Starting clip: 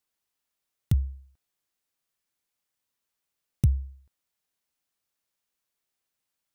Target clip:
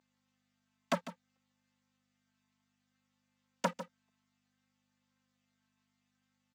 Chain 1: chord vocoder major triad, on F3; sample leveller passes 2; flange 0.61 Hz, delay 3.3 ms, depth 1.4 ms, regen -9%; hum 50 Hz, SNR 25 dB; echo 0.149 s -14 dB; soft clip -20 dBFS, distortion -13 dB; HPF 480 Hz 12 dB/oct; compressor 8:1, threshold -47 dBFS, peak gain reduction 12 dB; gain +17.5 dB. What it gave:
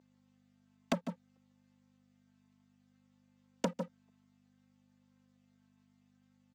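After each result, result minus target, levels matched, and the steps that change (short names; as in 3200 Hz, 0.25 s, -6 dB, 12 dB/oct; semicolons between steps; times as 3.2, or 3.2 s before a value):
compressor: peak gain reduction +12 dB; 1000 Hz band -4.0 dB
remove: compressor 8:1, threshold -47 dBFS, peak gain reduction 12 dB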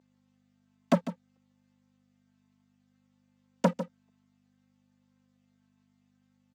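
1000 Hz band -4.5 dB
change: HPF 1000 Hz 12 dB/oct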